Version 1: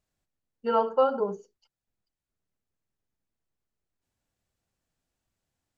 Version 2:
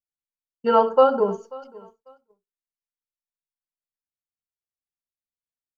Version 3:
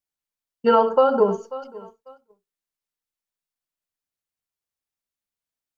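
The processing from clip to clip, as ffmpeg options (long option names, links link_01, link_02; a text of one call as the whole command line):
ffmpeg -i in.wav -af "aecho=1:1:538|1076:0.0794|0.0222,agate=range=-33dB:threshold=-50dB:ratio=3:detection=peak,volume=7dB" out.wav
ffmpeg -i in.wav -af "alimiter=limit=-11dB:level=0:latency=1:release=163,volume=4.5dB" out.wav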